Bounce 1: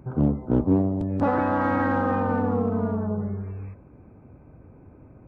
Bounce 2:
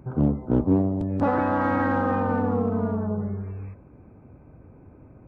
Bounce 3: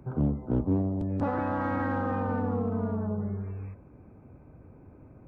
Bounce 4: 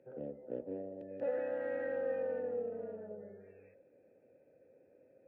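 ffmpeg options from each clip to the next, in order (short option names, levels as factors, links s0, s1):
-af anull
-filter_complex "[0:a]acrossover=split=160[s0][s1];[s1]acompressor=threshold=0.0251:ratio=1.5[s2];[s0][s2]amix=inputs=2:normalize=0,volume=0.75"
-filter_complex "[0:a]asplit=3[s0][s1][s2];[s0]bandpass=f=530:t=q:w=8,volume=1[s3];[s1]bandpass=f=1840:t=q:w=8,volume=0.501[s4];[s2]bandpass=f=2480:t=q:w=8,volume=0.355[s5];[s3][s4][s5]amix=inputs=3:normalize=0,lowshelf=f=78:g=-11,volume=1.33"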